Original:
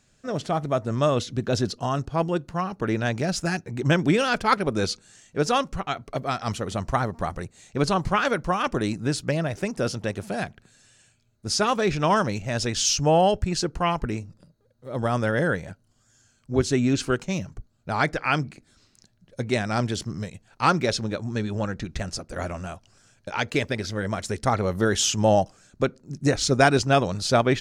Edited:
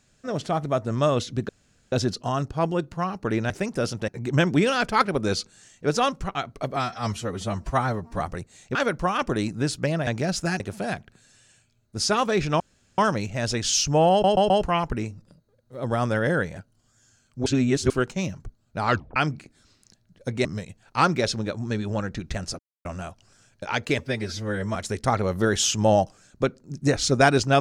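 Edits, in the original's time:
1.49 insert room tone 0.43 s
3.07–3.6 swap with 9.52–10.1
6.28–7.24 stretch 1.5×
7.79–8.2 cut
12.1 insert room tone 0.38 s
13.23 stutter in place 0.13 s, 4 plays
16.58–17.02 reverse
17.99 tape stop 0.29 s
19.57–20.1 cut
22.24–22.5 mute
23.64–24.15 stretch 1.5×

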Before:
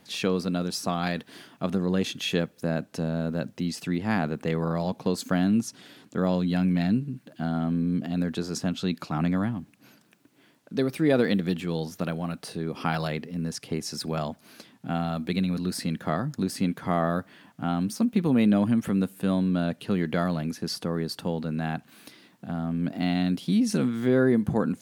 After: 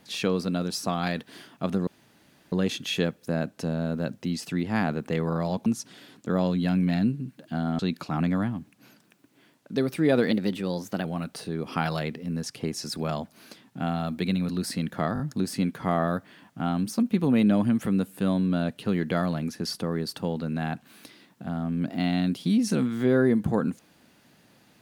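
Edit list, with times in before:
1.87 insert room tone 0.65 s
5.01–5.54 cut
7.67–8.8 cut
11.32–12.13 speed 110%
16.22 stutter 0.02 s, 4 plays

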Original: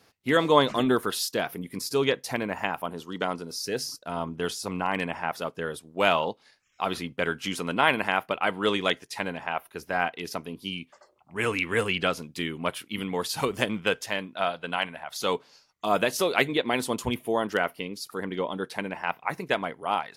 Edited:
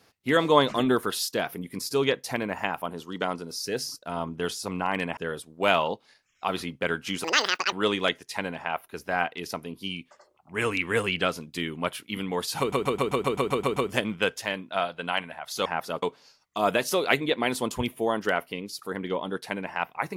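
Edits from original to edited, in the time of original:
5.17–5.54 move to 15.3
7.61–8.54 speed 192%
13.41 stutter 0.13 s, 10 plays

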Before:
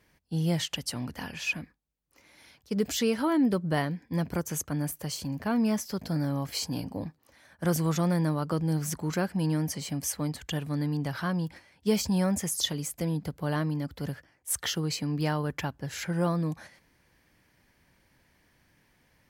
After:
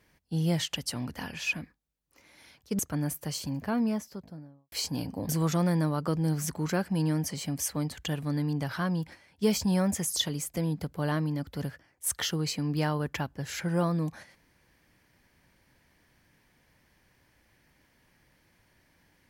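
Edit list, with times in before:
2.79–4.57 cut
5.25–6.5 studio fade out
7.07–7.73 cut

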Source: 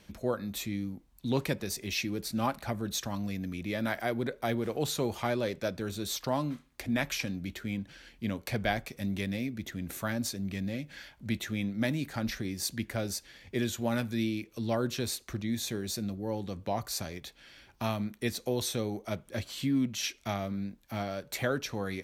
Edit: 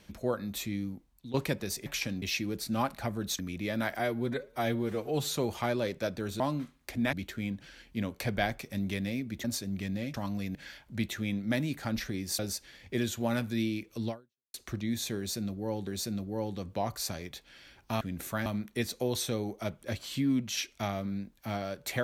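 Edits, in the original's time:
0.92–1.34 fade out, to -15.5 dB
3.03–3.44 move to 10.86
4.04–4.92 stretch 1.5×
6.01–6.31 cut
7.04–7.4 move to 1.86
9.71–10.16 move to 17.92
12.7–13 cut
14.69–15.15 fade out exponential
15.78–16.48 loop, 2 plays

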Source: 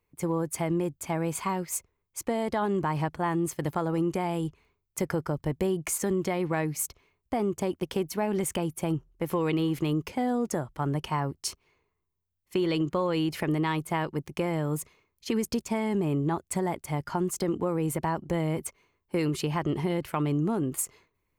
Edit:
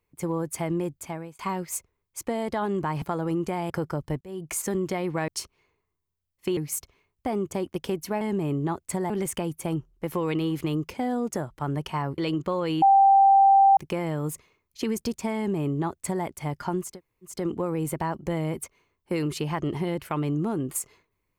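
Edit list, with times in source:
0.95–1.39 fade out
3.02–3.69 cut
4.37–5.06 cut
5.57–5.92 fade in
11.36–12.65 move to 6.64
13.29–14.24 bleep 785 Hz -13 dBFS
15.83–16.72 copy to 8.28
17.36 insert room tone 0.44 s, crossfade 0.24 s

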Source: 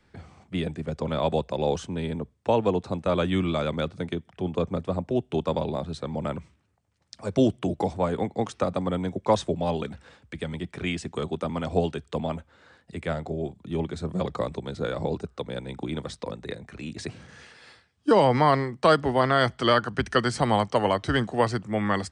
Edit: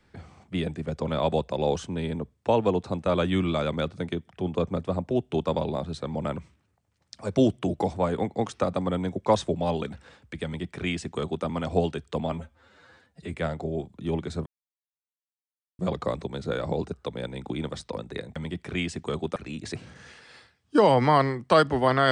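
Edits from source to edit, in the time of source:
10.45–11.45 copy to 16.69
12.32–13 stretch 1.5×
14.12 insert silence 1.33 s

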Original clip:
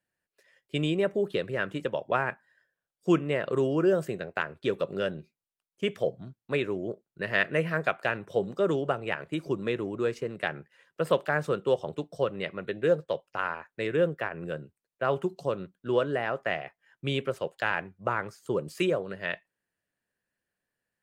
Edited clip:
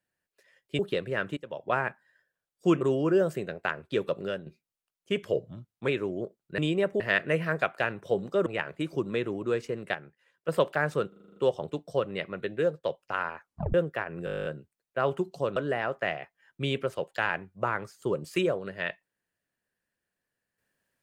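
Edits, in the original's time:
0.79–1.21 move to 7.25
1.79–2.19 fade in, from -21 dB
3.23–3.53 cut
4.87–5.18 fade out, to -8 dB
5.95–6.55 speed 92%
8.71–8.99 cut
10.47–11.01 gain -7.5 dB
11.61 stutter 0.04 s, 8 plays
12.74–13.08 fade out, to -7 dB
13.65 tape stop 0.34 s
14.5 stutter 0.02 s, 11 plays
15.61–16 cut

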